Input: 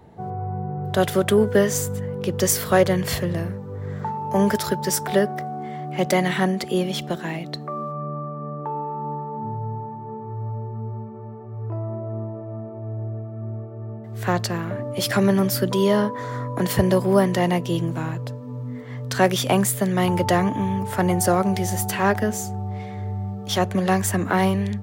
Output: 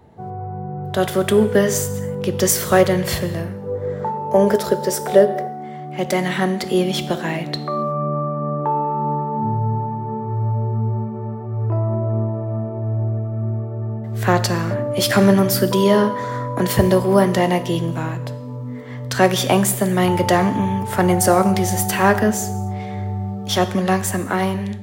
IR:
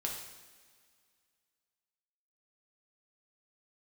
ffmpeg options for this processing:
-filter_complex "[0:a]asettb=1/sr,asplit=3[link_01][link_02][link_03];[link_01]atrim=end=3.624[link_04];[link_02]atrim=start=3.62:end=5.47,asetpts=PTS-STARTPTS,afade=type=in:duration=0.004:curve=qsin,afade=type=out:start_time=1.846:duration=0.004:curve=qsin,equalizer=frequency=510:width=1.6:gain=13[link_05];[link_03]atrim=start=5.466[link_06];[link_04][link_05]acrossfade=duration=0.004:curve1=hsin:curve2=qsin[link_07];[link_07][link_06]acrossfade=duration=0.004:curve1=qsin:curve2=hsin,dynaudnorm=framelen=230:gausssize=11:maxgain=8.5dB,asplit=2[link_08][link_09];[1:a]atrim=start_sample=2205,afade=type=out:start_time=0.33:duration=0.01,atrim=end_sample=14994[link_10];[link_09][link_10]afir=irnorm=-1:irlink=0,volume=-6.5dB[link_11];[link_08][link_11]amix=inputs=2:normalize=0,volume=-3.5dB"

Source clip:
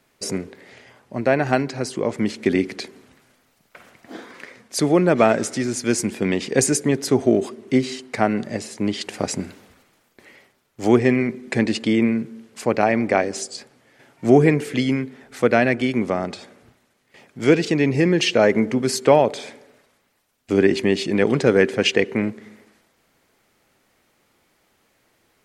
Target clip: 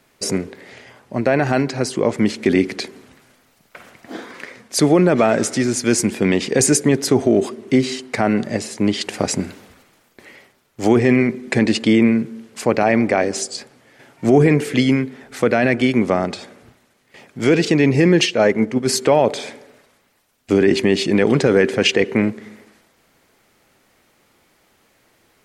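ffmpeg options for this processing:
ffmpeg -i in.wav -filter_complex "[0:a]alimiter=limit=-9.5dB:level=0:latency=1:release=16,asplit=3[link_01][link_02][link_03];[link_01]afade=type=out:start_time=18.25:duration=0.02[link_04];[link_02]agate=range=-7dB:threshold=-18dB:ratio=16:detection=peak,afade=type=in:start_time=18.25:duration=0.02,afade=type=out:start_time=18.87:duration=0.02[link_05];[link_03]afade=type=in:start_time=18.87:duration=0.02[link_06];[link_04][link_05][link_06]amix=inputs=3:normalize=0,volume=5dB" out.wav

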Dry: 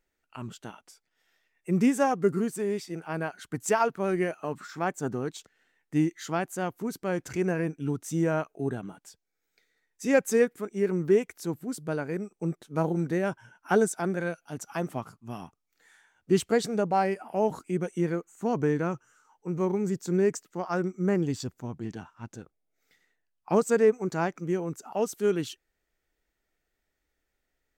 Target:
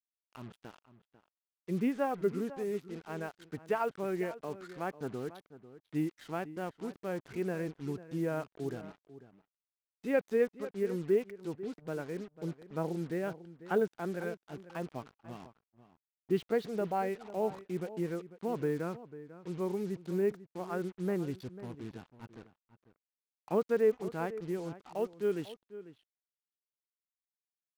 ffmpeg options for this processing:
ffmpeg -i in.wav -filter_complex "[0:a]lowpass=frequency=3800:width=0.5412,lowpass=frequency=3800:width=1.3066,equalizer=frequency=450:width_type=o:width=0.76:gain=3.5,acrusher=bits=6:mix=0:aa=0.5,asplit=2[link_01][link_02];[link_02]adelay=495.6,volume=-15dB,highshelf=frequency=4000:gain=-11.2[link_03];[link_01][link_03]amix=inputs=2:normalize=0,volume=-9dB" out.wav

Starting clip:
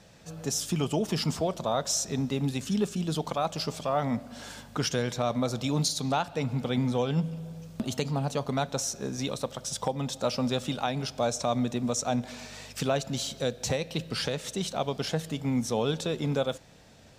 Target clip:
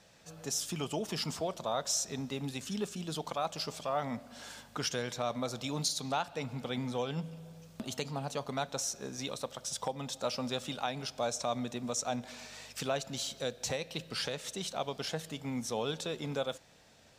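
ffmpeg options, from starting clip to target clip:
ffmpeg -i in.wav -af "lowshelf=frequency=390:gain=-8,volume=-3.5dB" out.wav

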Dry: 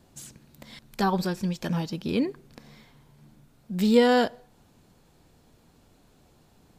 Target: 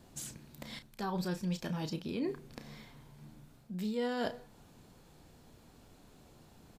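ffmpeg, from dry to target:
ffmpeg -i in.wav -filter_complex "[0:a]areverse,acompressor=threshold=-33dB:ratio=10,areverse,asplit=2[link_01][link_02];[link_02]adelay=33,volume=-10dB[link_03];[link_01][link_03]amix=inputs=2:normalize=0" out.wav

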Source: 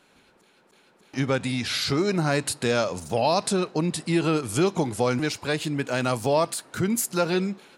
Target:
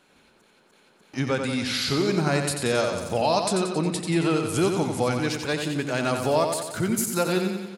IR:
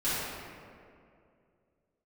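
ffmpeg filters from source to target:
-af "aecho=1:1:90|180|270|360|450|540|630:0.501|0.286|0.163|0.0928|0.0529|0.0302|0.0172,volume=-1dB"

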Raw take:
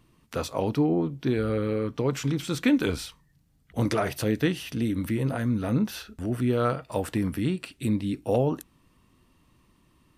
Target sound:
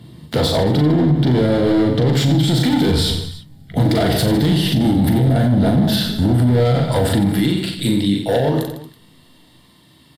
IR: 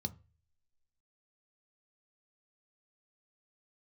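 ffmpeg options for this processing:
-filter_complex "[0:a]asetnsamples=nb_out_samples=441:pad=0,asendcmd='7.25 highpass f 1000',highpass=frequency=130:poles=1,volume=30.5dB,asoftclip=hard,volume=-30.5dB,aecho=1:1:40|90|152.5|230.6|328.3:0.631|0.398|0.251|0.158|0.1[link_01];[1:a]atrim=start_sample=2205,asetrate=37485,aresample=44100[link_02];[link_01][link_02]afir=irnorm=-1:irlink=0,alimiter=level_in=21.5dB:limit=-1dB:release=50:level=0:latency=1,volume=-6.5dB"

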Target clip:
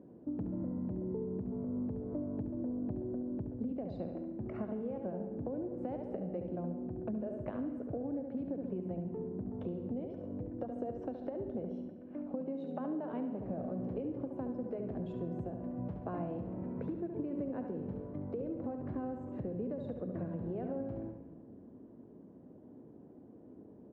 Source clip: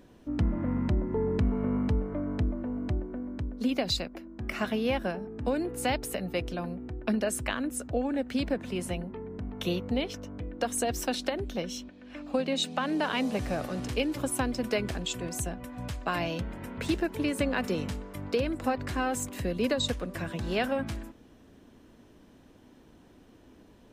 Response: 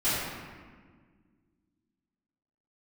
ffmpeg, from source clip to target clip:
-filter_complex "[0:a]asuperpass=centerf=270:order=4:qfactor=0.55,alimiter=level_in=1dB:limit=-24dB:level=0:latency=1:release=288,volume=-1dB,aecho=1:1:70|140|210|280|350:0.422|0.169|0.0675|0.027|0.0108,acompressor=threshold=-37dB:ratio=6,asplit=2[link_01][link_02];[1:a]atrim=start_sample=2205,adelay=72[link_03];[link_02][link_03]afir=irnorm=-1:irlink=0,volume=-23dB[link_04];[link_01][link_04]amix=inputs=2:normalize=0,volume=1.5dB"

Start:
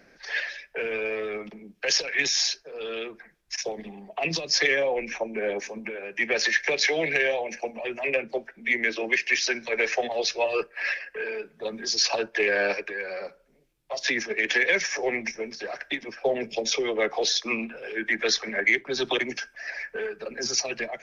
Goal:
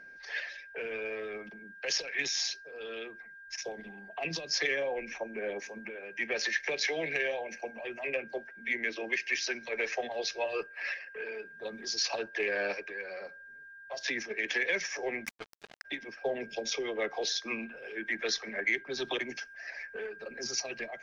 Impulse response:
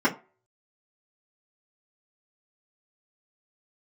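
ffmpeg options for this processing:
-filter_complex "[0:a]aeval=exprs='val(0)+0.01*sin(2*PI*1600*n/s)':channel_layout=same,asplit=3[link_01][link_02][link_03];[link_01]afade=type=out:start_time=15.24:duration=0.02[link_04];[link_02]acrusher=bits=3:mix=0:aa=0.5,afade=type=in:start_time=15.24:duration=0.02,afade=type=out:start_time=15.84:duration=0.02[link_05];[link_03]afade=type=in:start_time=15.84:duration=0.02[link_06];[link_04][link_05][link_06]amix=inputs=3:normalize=0,volume=-8dB"

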